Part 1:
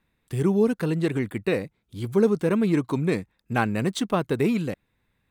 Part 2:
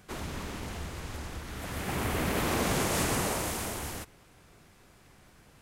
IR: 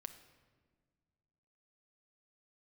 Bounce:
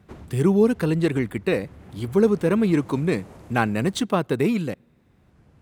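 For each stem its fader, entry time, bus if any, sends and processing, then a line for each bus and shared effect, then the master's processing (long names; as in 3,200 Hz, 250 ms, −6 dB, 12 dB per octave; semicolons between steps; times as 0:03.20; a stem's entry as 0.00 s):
+1.0 dB, 0.00 s, send −20.5 dB, speech leveller within 5 dB 2 s
−4.0 dB, 0.00 s, no send, spectral tilt −3.5 dB per octave; brickwall limiter −19.5 dBFS, peak gain reduction 9 dB; automatic ducking −11 dB, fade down 0.20 s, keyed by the first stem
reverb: on, RT60 1.7 s, pre-delay 6 ms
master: high-pass filter 77 Hz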